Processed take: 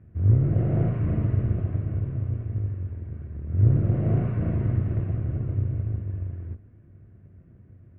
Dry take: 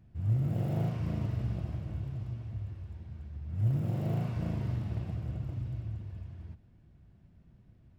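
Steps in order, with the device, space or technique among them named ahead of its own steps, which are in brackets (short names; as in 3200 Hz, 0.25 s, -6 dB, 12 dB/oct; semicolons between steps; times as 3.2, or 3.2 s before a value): sub-octave bass pedal (octaver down 2 oct, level 0 dB; speaker cabinet 75–2100 Hz, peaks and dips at 93 Hz +8 dB, 180 Hz -3 dB, 370 Hz +3 dB, 850 Hz -10 dB); gain +7 dB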